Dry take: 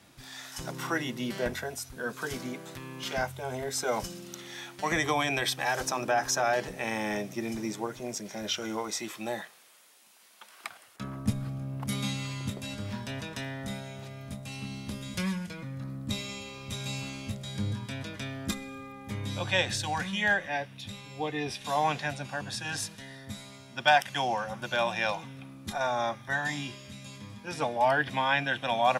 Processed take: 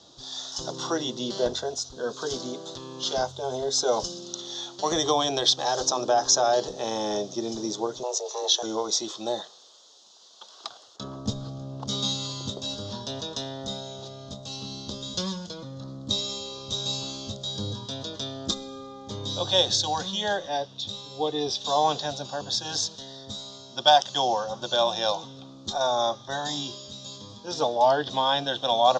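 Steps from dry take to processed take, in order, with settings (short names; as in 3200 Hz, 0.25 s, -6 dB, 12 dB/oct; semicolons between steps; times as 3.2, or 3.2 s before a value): 8.03–8.63 frequency shift +250 Hz; EQ curve 210 Hz 0 dB, 430 Hz +10 dB, 1200 Hz +4 dB, 2300 Hz -16 dB, 3500 Hz +14 dB, 6800 Hz +11 dB, 10000 Hz -26 dB; gain -2 dB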